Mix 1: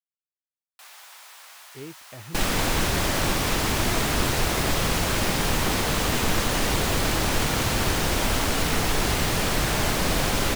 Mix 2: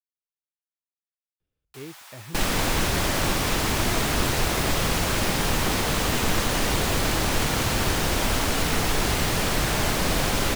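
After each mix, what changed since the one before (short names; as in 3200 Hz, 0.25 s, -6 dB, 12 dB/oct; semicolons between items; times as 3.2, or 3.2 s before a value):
first sound: entry +0.95 s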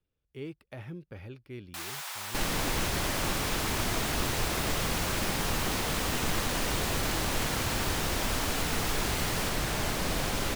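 speech: entry -1.40 s; first sound +7.5 dB; second sound -7.0 dB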